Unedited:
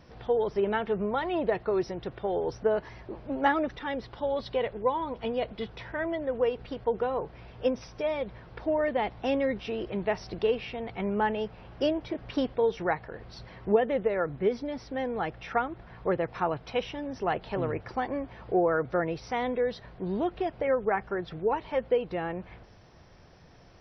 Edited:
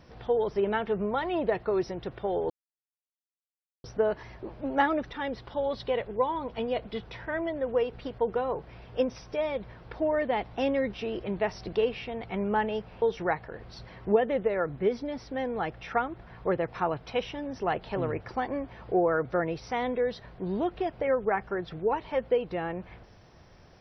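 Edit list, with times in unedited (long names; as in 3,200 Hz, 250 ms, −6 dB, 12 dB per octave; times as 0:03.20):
0:02.50: splice in silence 1.34 s
0:11.68–0:12.62: remove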